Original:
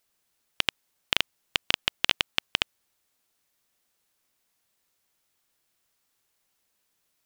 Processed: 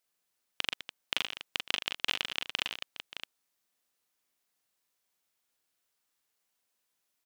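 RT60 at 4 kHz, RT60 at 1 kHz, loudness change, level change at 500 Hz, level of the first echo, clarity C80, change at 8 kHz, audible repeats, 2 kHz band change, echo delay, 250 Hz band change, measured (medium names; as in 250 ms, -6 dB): no reverb, no reverb, -6.5 dB, -6.5 dB, -4.5 dB, no reverb, -5.5 dB, 5, -5.5 dB, 41 ms, -7.5 dB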